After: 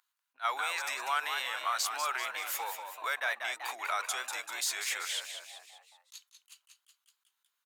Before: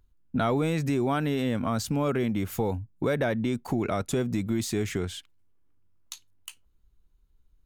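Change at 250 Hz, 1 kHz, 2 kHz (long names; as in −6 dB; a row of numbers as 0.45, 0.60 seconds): below −35 dB, +0.5 dB, +4.0 dB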